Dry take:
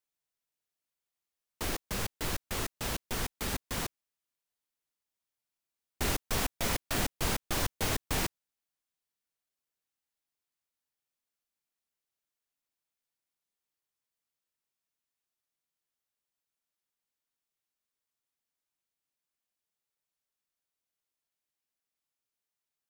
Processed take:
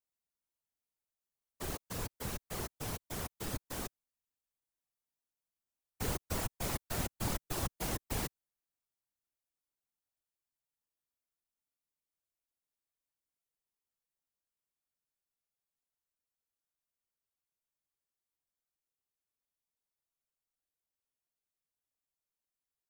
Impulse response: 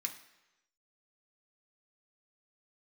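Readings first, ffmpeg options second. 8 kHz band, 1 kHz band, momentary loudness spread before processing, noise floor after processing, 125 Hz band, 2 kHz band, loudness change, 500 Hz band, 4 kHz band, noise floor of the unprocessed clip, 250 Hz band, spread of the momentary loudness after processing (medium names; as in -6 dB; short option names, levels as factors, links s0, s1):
-5.5 dB, -5.5 dB, 5 LU, under -85 dBFS, -2.5 dB, -9.0 dB, -5.5 dB, -4.5 dB, -9.0 dB, under -85 dBFS, -4.0 dB, 6 LU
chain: -filter_complex "[0:a]acrossover=split=130|1200|6400[s0][s1][s2][s3];[s2]aeval=exprs='max(val(0),0)':c=same[s4];[s0][s1][s4][s3]amix=inputs=4:normalize=0,afftfilt=real='hypot(re,im)*cos(2*PI*random(0))':imag='hypot(re,im)*sin(2*PI*random(1))':win_size=512:overlap=0.75,volume=1.19"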